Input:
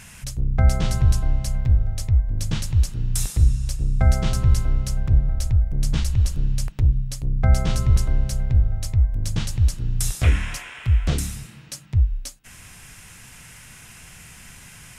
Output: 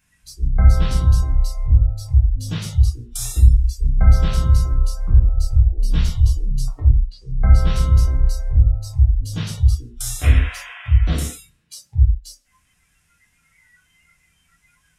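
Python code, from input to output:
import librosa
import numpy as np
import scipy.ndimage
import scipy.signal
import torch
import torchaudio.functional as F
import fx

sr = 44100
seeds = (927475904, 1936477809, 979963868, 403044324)

y = fx.env_lowpass(x, sr, base_hz=1800.0, full_db=-15.0, at=(6.72, 7.65), fade=0.02)
y = fx.rev_gated(y, sr, seeds[0], gate_ms=210, shape='falling', drr_db=-3.5)
y = fx.noise_reduce_blind(y, sr, reduce_db=22)
y = F.gain(torch.from_numpy(y), -3.5).numpy()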